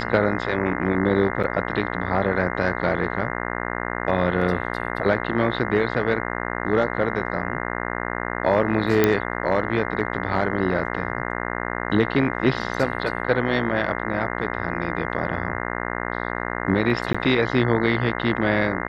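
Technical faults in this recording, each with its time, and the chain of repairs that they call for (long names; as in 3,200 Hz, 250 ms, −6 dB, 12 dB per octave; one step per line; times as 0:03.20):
mains buzz 60 Hz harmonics 35 −28 dBFS
0:01.43–0:01.44: drop-out 6.5 ms
0:09.04: click −4 dBFS
0:17.13–0:17.14: drop-out 15 ms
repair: click removal
hum removal 60 Hz, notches 35
repair the gap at 0:01.43, 6.5 ms
repair the gap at 0:17.13, 15 ms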